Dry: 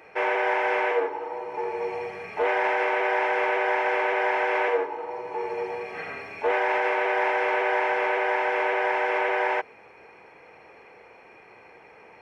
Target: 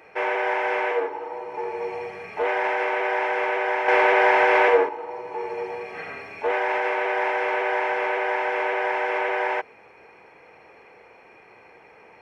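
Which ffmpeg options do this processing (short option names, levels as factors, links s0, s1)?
-filter_complex "[0:a]asettb=1/sr,asplit=3[s0][s1][s2];[s0]atrim=end=3.884[s3];[s1]atrim=start=3.88:end=4.89,asetpts=PTS-STARTPTS,afade=t=in:d=0.004:c=qsin,afade=t=out:st=1.006:d=0.004:c=qsin,acontrast=82[s4];[s2]atrim=start=4.886[s5];[s3][s4]acrossfade=d=0.004:c1=hsin:c2=qsin[s6];[s6][s5]acrossfade=d=0.004:c1=qsin:c2=hsin"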